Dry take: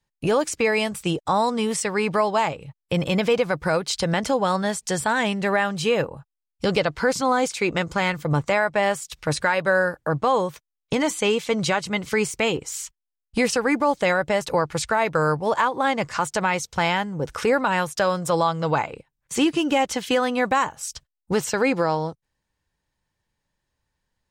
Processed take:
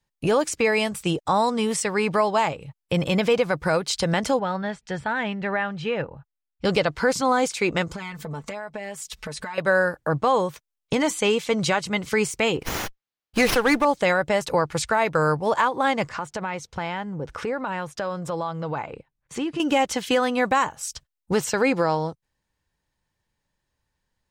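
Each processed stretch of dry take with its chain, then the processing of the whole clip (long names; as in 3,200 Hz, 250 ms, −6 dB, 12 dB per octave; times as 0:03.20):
0:04.39–0:06.65: low-pass filter 2,300 Hz + parametric band 420 Hz −5.5 dB 2.9 octaves + notch filter 1,100 Hz, Q 8.7
0:07.93–0:09.58: comb filter 4.6 ms, depth 95% + downward compressor 8 to 1, threshold −30 dBFS
0:12.60–0:13.85: spectral tilt +1.5 dB per octave + leveller curve on the samples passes 1 + windowed peak hold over 5 samples
0:16.09–0:19.60: low-pass filter 2,300 Hz 6 dB per octave + downward compressor 2 to 1, threshold −29 dBFS
whole clip: no processing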